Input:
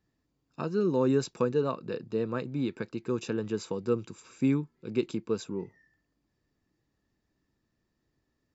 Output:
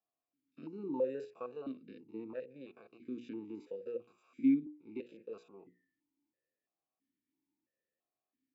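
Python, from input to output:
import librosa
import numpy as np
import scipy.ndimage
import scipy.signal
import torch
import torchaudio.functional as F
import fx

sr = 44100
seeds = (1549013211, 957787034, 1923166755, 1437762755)

y = fx.spec_steps(x, sr, hold_ms=50)
y = fx.hum_notches(y, sr, base_hz=60, count=8)
y = fx.vowel_held(y, sr, hz=3.0)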